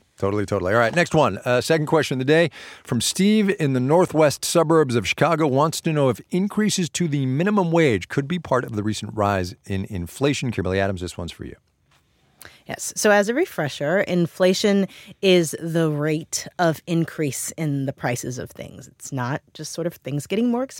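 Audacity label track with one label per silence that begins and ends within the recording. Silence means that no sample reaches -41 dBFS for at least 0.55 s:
11.540000	12.410000	silence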